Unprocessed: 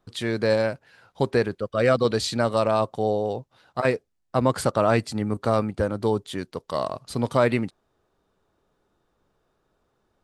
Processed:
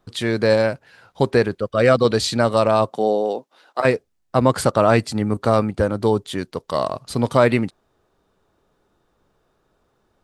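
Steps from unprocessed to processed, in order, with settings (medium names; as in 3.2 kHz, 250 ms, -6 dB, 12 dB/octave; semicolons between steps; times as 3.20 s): 2.89–3.80 s: high-pass 160 Hz -> 330 Hz 24 dB/octave; trim +5 dB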